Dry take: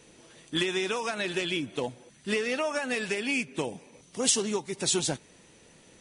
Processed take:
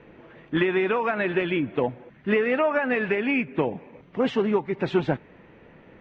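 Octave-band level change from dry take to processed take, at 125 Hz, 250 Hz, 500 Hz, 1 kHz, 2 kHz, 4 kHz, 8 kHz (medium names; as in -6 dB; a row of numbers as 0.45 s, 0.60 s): +7.5 dB, +7.5 dB, +7.5 dB, +7.5 dB, +4.5 dB, -8.0 dB, under -30 dB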